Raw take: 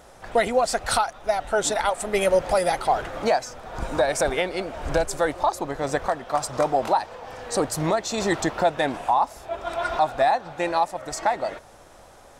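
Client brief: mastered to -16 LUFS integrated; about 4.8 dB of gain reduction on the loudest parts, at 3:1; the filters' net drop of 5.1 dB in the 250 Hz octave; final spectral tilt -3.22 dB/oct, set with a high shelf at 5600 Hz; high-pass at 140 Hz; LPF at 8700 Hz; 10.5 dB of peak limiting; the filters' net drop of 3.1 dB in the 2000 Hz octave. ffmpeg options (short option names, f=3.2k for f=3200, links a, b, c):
-af "highpass=140,lowpass=8.7k,equalizer=f=250:t=o:g=-7,equalizer=f=2k:t=o:g=-3.5,highshelf=f=5.6k:g=-4,acompressor=threshold=-23dB:ratio=3,volume=17dB,alimiter=limit=-5.5dB:level=0:latency=1"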